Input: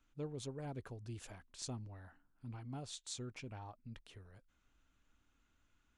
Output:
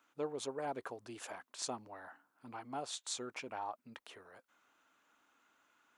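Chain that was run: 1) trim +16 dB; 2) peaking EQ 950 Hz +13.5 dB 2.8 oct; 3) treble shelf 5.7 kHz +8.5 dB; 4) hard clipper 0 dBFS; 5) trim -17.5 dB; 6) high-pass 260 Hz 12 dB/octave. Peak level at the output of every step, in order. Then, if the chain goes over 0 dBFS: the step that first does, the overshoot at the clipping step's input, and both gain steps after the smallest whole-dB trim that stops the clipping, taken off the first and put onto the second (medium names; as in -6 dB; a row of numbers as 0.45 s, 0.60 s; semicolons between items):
-11.0 dBFS, -8.5 dBFS, -4.0 dBFS, -4.0 dBFS, -21.5 dBFS, -21.5 dBFS; nothing clips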